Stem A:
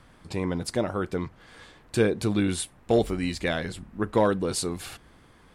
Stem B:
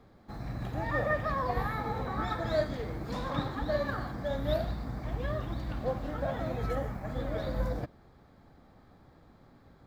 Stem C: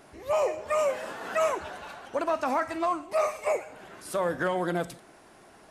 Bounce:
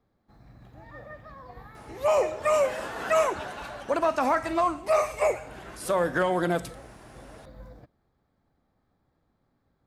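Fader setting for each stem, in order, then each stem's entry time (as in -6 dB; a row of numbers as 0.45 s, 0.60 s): mute, -14.5 dB, +3.0 dB; mute, 0.00 s, 1.75 s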